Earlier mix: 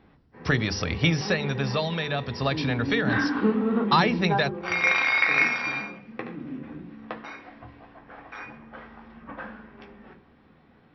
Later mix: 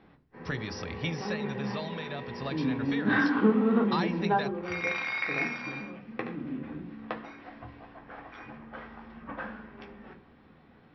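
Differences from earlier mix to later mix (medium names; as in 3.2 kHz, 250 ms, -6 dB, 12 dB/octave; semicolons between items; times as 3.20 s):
speech -11.0 dB; second sound -10.0 dB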